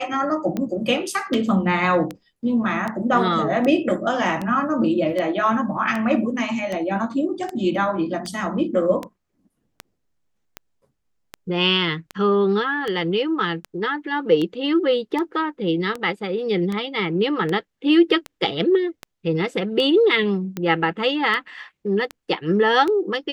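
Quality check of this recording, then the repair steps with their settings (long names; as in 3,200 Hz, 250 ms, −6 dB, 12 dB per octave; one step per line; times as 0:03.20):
scratch tick 78 rpm −14 dBFS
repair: click removal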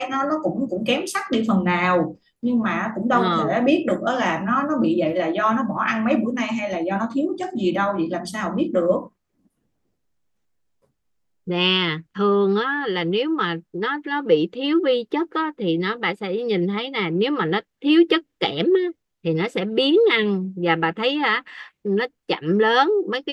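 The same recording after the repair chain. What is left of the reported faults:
none of them is left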